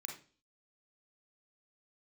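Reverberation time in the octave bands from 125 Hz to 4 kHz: 0.45, 0.50, 0.45, 0.35, 0.35, 0.45 seconds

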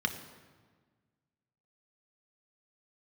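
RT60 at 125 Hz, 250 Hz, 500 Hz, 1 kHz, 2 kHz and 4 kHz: 2.0, 1.8, 1.5, 1.5, 1.3, 1.1 seconds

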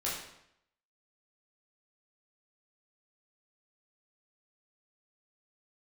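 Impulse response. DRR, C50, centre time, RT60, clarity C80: −7.5 dB, 2.5 dB, 54 ms, 0.75 s, 5.5 dB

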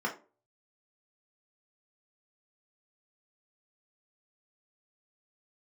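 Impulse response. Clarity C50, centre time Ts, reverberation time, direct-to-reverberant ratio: 12.0 dB, 15 ms, 0.35 s, −3.0 dB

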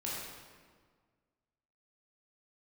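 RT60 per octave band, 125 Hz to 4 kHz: 2.0, 1.9, 1.7, 1.6, 1.4, 1.2 seconds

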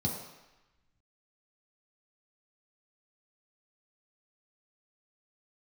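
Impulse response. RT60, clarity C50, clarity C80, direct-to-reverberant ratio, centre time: 1.0 s, 4.0 dB, 6.0 dB, −2.0 dB, 47 ms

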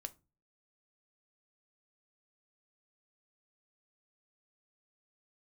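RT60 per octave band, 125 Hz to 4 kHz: 0.55, 0.45, 0.30, 0.25, 0.20, 0.20 seconds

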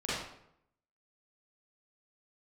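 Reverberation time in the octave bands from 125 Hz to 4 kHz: 0.85, 0.80, 0.75, 0.70, 0.65, 0.50 seconds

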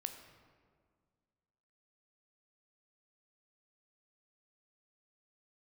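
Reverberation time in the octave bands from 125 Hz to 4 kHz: 2.3, 2.3, 2.0, 1.8, 1.4, 1.0 seconds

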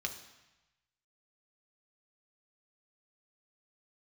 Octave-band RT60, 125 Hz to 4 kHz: 1.3, 0.95, 0.95, 1.1, 1.1, 1.0 seconds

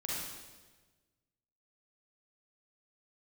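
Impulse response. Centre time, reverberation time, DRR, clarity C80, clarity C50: 99 ms, 1.3 s, −6.0 dB, 0.5 dB, −3.5 dB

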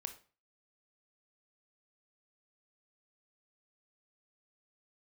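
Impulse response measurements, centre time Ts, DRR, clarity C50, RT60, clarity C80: 9 ms, 7.0 dB, 12.0 dB, 0.40 s, 17.5 dB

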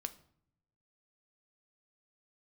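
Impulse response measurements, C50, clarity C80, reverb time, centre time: 16.5 dB, 20.0 dB, 0.65 s, 4 ms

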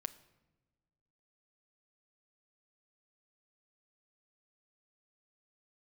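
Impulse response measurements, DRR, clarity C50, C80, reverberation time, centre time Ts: 12.5 dB, 17.0 dB, 18.5 dB, non-exponential decay, 4 ms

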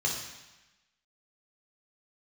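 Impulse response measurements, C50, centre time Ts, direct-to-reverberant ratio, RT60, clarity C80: 3.0 dB, 48 ms, −3.0 dB, 1.0 s, 6.0 dB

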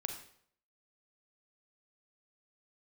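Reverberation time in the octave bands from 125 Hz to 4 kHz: 0.65, 0.60, 0.65, 0.60, 0.55, 0.55 seconds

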